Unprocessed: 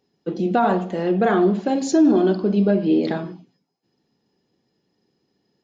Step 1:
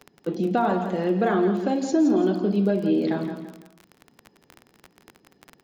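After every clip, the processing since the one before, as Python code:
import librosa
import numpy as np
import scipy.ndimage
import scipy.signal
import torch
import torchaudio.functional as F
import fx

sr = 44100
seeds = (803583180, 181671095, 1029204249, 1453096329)

y = fx.dmg_crackle(x, sr, seeds[0], per_s=18.0, level_db=-30.0)
y = fx.echo_feedback(y, sr, ms=168, feedback_pct=29, wet_db=-10)
y = fx.band_squash(y, sr, depth_pct=40)
y = y * 10.0 ** (-4.0 / 20.0)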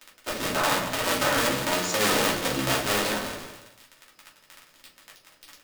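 y = fx.cycle_switch(x, sr, every=3, mode='inverted')
y = fx.tilt_shelf(y, sr, db=-9.5, hz=870.0)
y = fx.room_shoebox(y, sr, seeds[1], volume_m3=160.0, walls='furnished', distance_m=2.7)
y = y * 10.0 ** (-8.0 / 20.0)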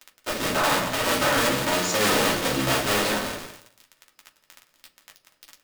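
y = fx.leveller(x, sr, passes=2)
y = y * 10.0 ** (-4.5 / 20.0)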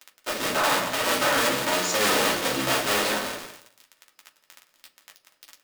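y = fx.low_shelf(x, sr, hz=170.0, db=-11.5)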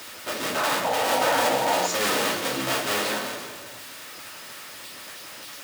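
y = x + 0.5 * 10.0 ** (-32.0 / 20.0) * np.sign(x)
y = scipy.signal.sosfilt(scipy.signal.butter(2, 85.0, 'highpass', fs=sr, output='sos'), y)
y = fx.spec_paint(y, sr, seeds[2], shape='noise', start_s=0.84, length_s=1.03, low_hz=450.0, high_hz=970.0, level_db=-22.0)
y = y * 10.0 ** (-3.0 / 20.0)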